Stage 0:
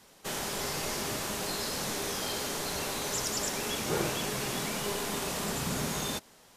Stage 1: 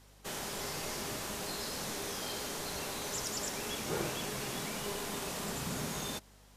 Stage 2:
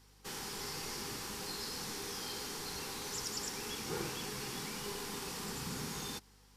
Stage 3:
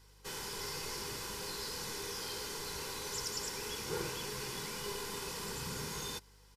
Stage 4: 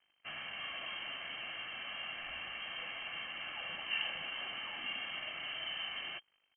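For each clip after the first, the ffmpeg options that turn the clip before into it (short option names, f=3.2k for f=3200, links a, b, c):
-af "aeval=exprs='val(0)+0.00178*(sin(2*PI*50*n/s)+sin(2*PI*2*50*n/s)/2+sin(2*PI*3*50*n/s)/3+sin(2*PI*4*50*n/s)/4+sin(2*PI*5*50*n/s)/5)':c=same,volume=-5dB"
-af "superequalizer=8b=0.282:14b=1.58,volume=-3.5dB"
-af "aecho=1:1:2:0.46"
-af "aeval=exprs='sgn(val(0))*max(abs(val(0))-0.00133,0)':c=same,lowpass=f=2.7k:t=q:w=0.5098,lowpass=f=2.7k:t=q:w=0.6013,lowpass=f=2.7k:t=q:w=0.9,lowpass=f=2.7k:t=q:w=2.563,afreqshift=-3200,volume=2.5dB"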